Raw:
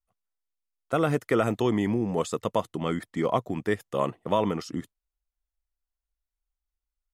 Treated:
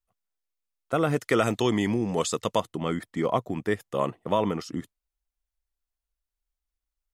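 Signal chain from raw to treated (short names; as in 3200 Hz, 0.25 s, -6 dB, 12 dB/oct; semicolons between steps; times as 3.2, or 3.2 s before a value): 1.16–2.6 bell 5400 Hz +9 dB 2.5 oct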